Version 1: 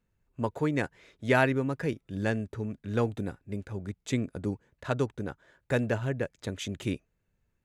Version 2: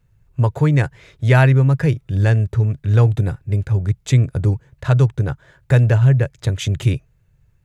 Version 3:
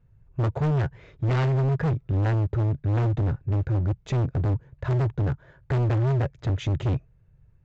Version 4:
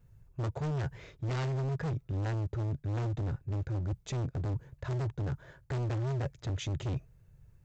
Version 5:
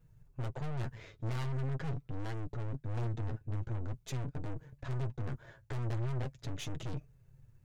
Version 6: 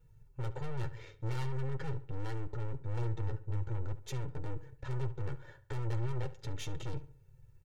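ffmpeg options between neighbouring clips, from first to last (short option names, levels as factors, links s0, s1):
-filter_complex "[0:a]lowshelf=f=170:t=q:w=3:g=7.5,asplit=2[s0][s1];[s1]alimiter=limit=0.106:level=0:latency=1:release=149,volume=0.944[s2];[s0][s2]amix=inputs=2:normalize=0,volume=1.68"
-af "lowpass=f=1000:p=1,aresample=16000,asoftclip=type=hard:threshold=0.0891,aresample=44100"
-af "bass=f=250:g=-1,treble=f=4000:g=11,areverse,acompressor=threshold=0.0224:ratio=5,areverse"
-af "aeval=exprs='(tanh(89.1*val(0)+0.75)-tanh(0.75))/89.1':c=same,flanger=delay=6.2:depth=3.2:regen=31:speed=0.44:shape=triangular,volume=2"
-filter_complex "[0:a]aecho=1:1:2.2:0.73,asplit=2[s0][s1];[s1]adelay=70,lowpass=f=3100:p=1,volume=0.178,asplit=2[s2][s3];[s3]adelay=70,lowpass=f=3100:p=1,volume=0.39,asplit=2[s4][s5];[s5]adelay=70,lowpass=f=3100:p=1,volume=0.39,asplit=2[s6][s7];[s7]adelay=70,lowpass=f=3100:p=1,volume=0.39[s8];[s0][s2][s4][s6][s8]amix=inputs=5:normalize=0,volume=0.794"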